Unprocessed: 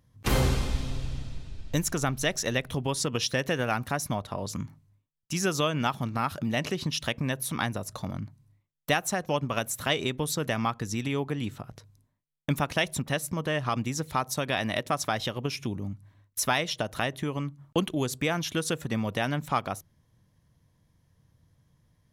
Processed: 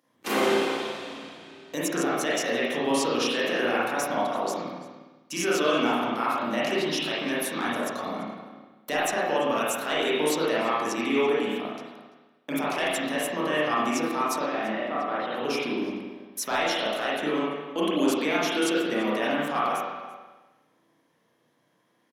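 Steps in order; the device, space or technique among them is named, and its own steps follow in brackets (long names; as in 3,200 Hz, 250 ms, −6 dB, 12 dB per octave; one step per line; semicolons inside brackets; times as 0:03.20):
high-pass filter 260 Hz 24 dB per octave
clipper into limiter (hard clipping −14 dBFS, distortion −27 dB; brickwall limiter −20.5 dBFS, peak gain reduction 6.5 dB)
0:14.39–0:15.34: high-frequency loss of the air 470 metres
slap from a distant wall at 58 metres, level −16 dB
spring reverb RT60 1.2 s, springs 33/51 ms, chirp 65 ms, DRR −7.5 dB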